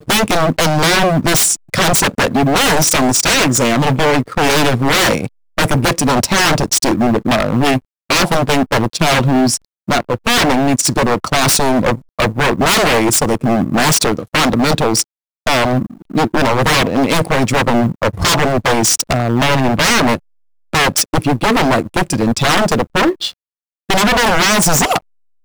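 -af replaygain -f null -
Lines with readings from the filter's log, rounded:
track_gain = -4.9 dB
track_peak = 0.327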